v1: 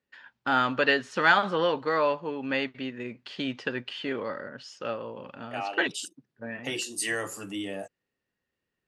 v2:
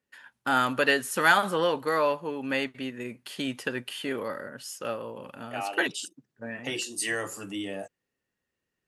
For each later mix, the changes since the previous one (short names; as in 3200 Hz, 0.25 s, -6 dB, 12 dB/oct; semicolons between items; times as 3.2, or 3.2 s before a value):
first voice: remove LPF 5200 Hz 24 dB/oct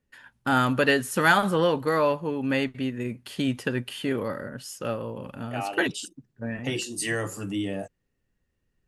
master: remove HPF 480 Hz 6 dB/oct